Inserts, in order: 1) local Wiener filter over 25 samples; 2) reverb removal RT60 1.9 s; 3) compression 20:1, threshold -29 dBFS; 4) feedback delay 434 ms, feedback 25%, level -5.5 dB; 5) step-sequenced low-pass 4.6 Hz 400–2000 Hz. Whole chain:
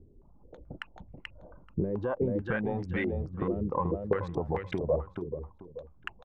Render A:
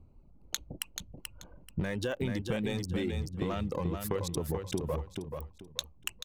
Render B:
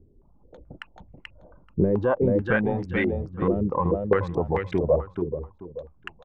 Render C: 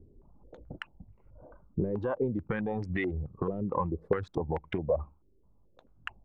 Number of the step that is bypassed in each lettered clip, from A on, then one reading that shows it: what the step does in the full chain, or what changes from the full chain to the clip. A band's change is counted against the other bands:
5, 4 kHz band +15.5 dB; 3, mean gain reduction 4.5 dB; 4, momentary loudness spread change -2 LU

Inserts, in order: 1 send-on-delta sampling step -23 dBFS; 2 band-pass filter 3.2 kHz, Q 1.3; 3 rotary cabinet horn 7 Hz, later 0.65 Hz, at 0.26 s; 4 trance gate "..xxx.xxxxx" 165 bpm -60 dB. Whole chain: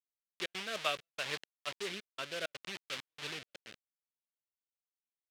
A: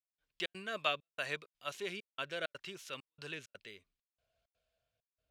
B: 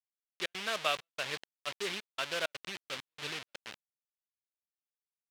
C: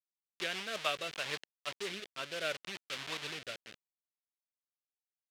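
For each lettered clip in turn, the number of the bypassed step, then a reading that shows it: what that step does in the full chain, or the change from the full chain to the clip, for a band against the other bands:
1, distortion -7 dB; 3, 250 Hz band -1.5 dB; 4, momentary loudness spread change -1 LU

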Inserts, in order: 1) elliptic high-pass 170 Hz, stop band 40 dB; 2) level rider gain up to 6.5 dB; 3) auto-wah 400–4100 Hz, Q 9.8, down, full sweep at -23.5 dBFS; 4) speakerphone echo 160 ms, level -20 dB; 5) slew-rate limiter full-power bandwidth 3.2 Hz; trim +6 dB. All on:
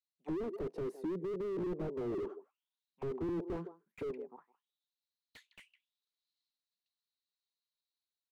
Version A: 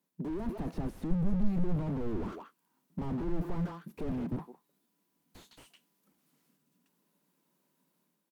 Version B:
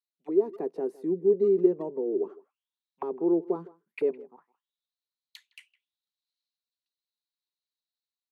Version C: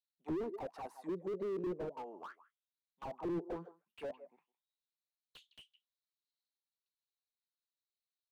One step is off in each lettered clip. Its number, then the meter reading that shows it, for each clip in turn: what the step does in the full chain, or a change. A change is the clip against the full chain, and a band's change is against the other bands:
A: 3, 500 Hz band -9.0 dB; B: 5, crest factor change +5.0 dB; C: 2, crest factor change +2.0 dB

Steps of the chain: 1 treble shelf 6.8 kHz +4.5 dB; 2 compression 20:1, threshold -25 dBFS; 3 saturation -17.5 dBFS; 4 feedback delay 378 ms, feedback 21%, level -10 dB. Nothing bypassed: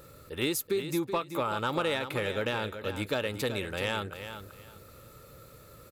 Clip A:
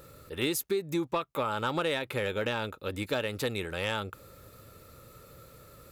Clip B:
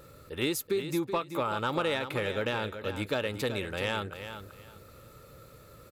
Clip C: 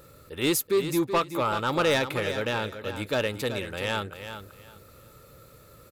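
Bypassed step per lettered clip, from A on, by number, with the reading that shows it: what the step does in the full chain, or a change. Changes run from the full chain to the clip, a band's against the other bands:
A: 4, momentary loudness spread change -15 LU; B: 1, 8 kHz band -2.0 dB; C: 2, mean gain reduction 2.5 dB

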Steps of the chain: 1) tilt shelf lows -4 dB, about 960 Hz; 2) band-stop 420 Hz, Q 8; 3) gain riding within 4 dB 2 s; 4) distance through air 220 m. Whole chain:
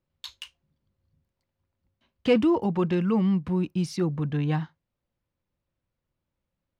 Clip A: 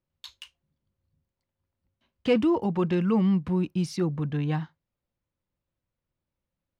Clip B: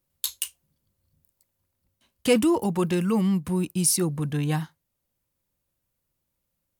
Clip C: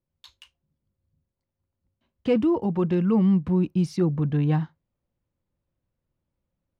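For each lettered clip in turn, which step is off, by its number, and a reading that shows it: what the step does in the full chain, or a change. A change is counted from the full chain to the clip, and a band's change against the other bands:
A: 3, momentary loudness spread change -8 LU; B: 4, 4 kHz band +5.5 dB; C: 1, 2 kHz band -6.0 dB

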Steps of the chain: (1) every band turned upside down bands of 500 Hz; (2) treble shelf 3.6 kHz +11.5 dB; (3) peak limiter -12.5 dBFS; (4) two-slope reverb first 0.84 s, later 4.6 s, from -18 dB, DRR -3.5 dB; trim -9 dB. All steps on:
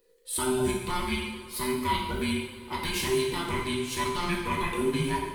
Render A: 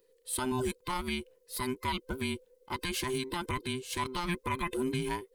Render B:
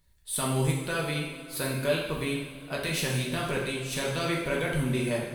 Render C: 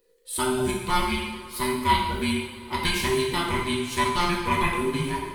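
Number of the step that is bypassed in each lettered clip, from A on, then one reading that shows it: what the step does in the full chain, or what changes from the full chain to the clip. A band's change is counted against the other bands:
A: 4, 500 Hz band -2.0 dB; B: 1, 1 kHz band -6.5 dB; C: 3, mean gain reduction 2.0 dB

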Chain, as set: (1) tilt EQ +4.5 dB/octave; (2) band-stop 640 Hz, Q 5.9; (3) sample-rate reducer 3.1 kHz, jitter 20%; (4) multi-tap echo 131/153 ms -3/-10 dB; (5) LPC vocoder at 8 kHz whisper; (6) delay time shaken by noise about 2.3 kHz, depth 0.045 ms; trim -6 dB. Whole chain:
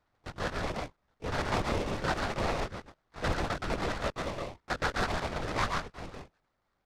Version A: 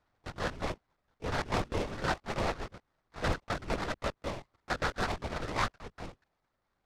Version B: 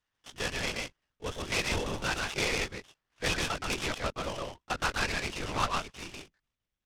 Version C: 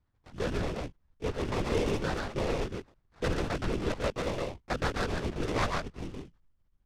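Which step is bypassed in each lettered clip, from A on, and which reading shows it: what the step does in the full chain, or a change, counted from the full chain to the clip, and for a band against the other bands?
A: 4, crest factor change +2.0 dB; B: 3, 8 kHz band +10.0 dB; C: 1, crest factor change -2.5 dB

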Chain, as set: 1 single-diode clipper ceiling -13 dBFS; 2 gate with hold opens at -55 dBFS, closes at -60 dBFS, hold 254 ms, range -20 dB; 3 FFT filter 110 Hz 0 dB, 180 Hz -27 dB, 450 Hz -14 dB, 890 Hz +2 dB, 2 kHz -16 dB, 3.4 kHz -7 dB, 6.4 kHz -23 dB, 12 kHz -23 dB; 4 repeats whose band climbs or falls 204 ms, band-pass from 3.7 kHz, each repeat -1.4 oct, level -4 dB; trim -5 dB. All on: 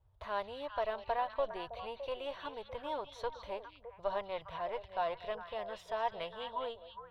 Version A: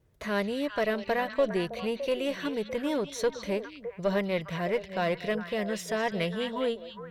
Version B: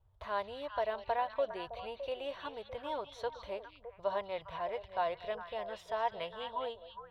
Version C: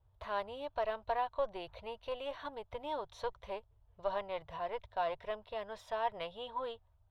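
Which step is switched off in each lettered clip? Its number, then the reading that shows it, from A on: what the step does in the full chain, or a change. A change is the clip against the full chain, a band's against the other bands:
3, 250 Hz band +12.5 dB; 1, loudness change +1.0 LU; 4, echo-to-direct -8.5 dB to none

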